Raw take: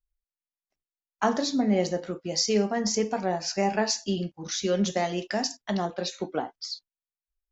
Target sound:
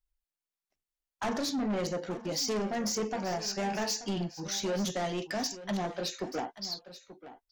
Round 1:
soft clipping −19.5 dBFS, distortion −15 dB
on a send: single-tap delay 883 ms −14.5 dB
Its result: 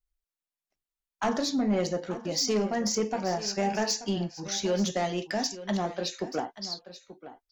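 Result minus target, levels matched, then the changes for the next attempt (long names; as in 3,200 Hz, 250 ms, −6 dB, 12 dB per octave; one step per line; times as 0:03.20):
soft clipping: distortion −7 dB
change: soft clipping −28 dBFS, distortion −7 dB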